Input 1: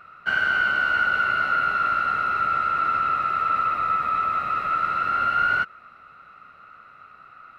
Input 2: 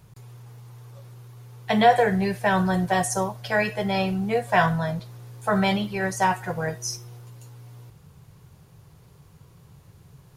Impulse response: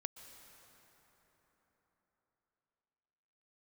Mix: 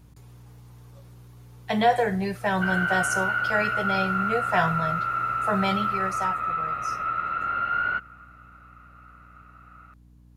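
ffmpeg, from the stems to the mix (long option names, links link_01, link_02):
-filter_complex "[0:a]lowpass=2700,adelay=2350,volume=-5dB,asplit=2[link_01][link_02];[link_02]volume=-15dB[link_03];[1:a]volume=-3.5dB,afade=type=out:start_time=5.87:duration=0.53:silence=0.281838[link_04];[2:a]atrim=start_sample=2205[link_05];[link_03][link_05]afir=irnorm=-1:irlink=0[link_06];[link_01][link_04][link_06]amix=inputs=3:normalize=0,aeval=exprs='val(0)+0.00251*(sin(2*PI*60*n/s)+sin(2*PI*2*60*n/s)/2+sin(2*PI*3*60*n/s)/3+sin(2*PI*4*60*n/s)/4+sin(2*PI*5*60*n/s)/5)':channel_layout=same"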